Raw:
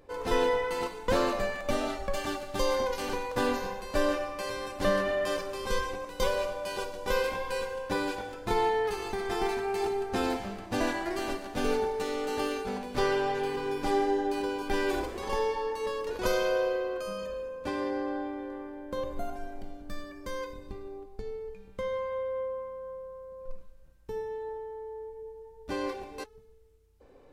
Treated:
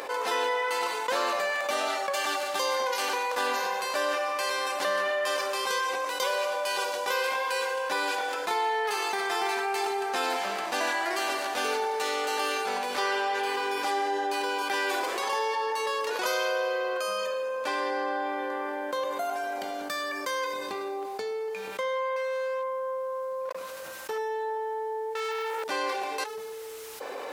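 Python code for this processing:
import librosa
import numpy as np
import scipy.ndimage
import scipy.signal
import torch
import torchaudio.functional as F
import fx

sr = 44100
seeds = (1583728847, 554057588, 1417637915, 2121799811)

y = fx.overload_stage(x, sr, gain_db=33.0, at=(22.16, 24.18))
y = fx.leveller(y, sr, passes=5, at=(25.15, 25.64))
y = scipy.signal.sosfilt(scipy.signal.butter(2, 730.0, 'highpass', fs=sr, output='sos'), y)
y = fx.env_flatten(y, sr, amount_pct=70)
y = y * librosa.db_to_amplitude(2.0)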